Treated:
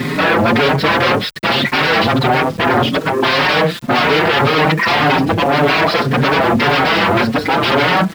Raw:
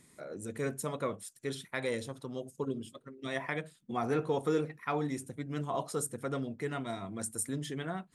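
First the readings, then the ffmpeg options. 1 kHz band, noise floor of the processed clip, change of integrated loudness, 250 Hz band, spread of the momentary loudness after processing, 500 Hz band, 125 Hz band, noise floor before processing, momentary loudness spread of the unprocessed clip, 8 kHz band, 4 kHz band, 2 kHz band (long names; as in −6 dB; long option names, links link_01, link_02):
+26.5 dB, −26 dBFS, +23.0 dB, +20.5 dB, 3 LU, +20.0 dB, +21.0 dB, −65 dBFS, 9 LU, +5.5 dB, +31.0 dB, +29.0 dB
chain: -filter_complex "[0:a]asplit=2[link_01][link_02];[link_02]acompressor=threshold=-43dB:ratio=4,volume=-2dB[link_03];[link_01][link_03]amix=inputs=2:normalize=0,apsyclip=33.5dB,aresample=11025,aeval=exprs='1.19*sin(PI/2*3.98*val(0)/1.19)':channel_layout=same,aresample=44100,aeval=exprs='2.24*(cos(1*acos(clip(val(0)/2.24,-1,1)))-cos(1*PI/2))+0.316*(cos(5*acos(clip(val(0)/2.24,-1,1)))-cos(5*PI/2))':channel_layout=same,highpass=120,lowpass=3300,aeval=exprs='val(0)*gte(abs(val(0)),0.168)':channel_layout=same,asplit=2[link_04][link_05];[link_05]adelay=5.2,afreqshift=1.8[link_06];[link_04][link_06]amix=inputs=2:normalize=1,volume=-9.5dB"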